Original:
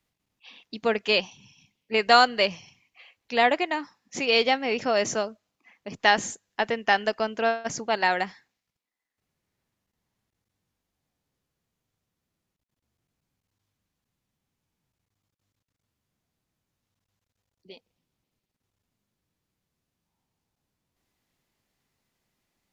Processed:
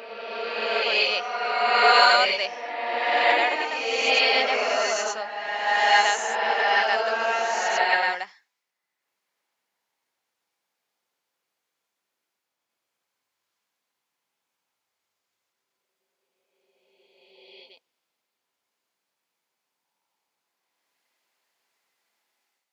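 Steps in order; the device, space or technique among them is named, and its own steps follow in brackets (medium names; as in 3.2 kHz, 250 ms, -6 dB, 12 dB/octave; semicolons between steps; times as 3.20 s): ghost voice (reverse; reverberation RT60 2.7 s, pre-delay 79 ms, DRR -8.5 dB; reverse; high-pass 650 Hz 12 dB/octave); trim -3.5 dB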